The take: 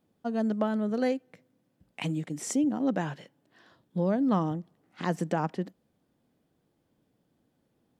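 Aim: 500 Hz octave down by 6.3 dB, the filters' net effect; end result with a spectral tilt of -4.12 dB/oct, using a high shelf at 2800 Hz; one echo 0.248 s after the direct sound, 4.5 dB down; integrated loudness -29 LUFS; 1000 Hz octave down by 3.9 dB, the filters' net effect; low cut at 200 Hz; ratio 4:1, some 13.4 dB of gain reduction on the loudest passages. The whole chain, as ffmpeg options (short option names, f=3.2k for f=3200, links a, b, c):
-af "highpass=200,equalizer=f=500:t=o:g=-7,equalizer=f=1k:t=o:g=-3.5,highshelf=f=2.8k:g=8,acompressor=threshold=-42dB:ratio=4,aecho=1:1:248:0.596,volume=14.5dB"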